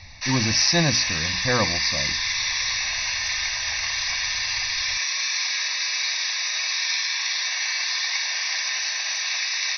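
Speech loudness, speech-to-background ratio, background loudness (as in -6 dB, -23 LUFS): -23.0 LUFS, 0.0 dB, -23.0 LUFS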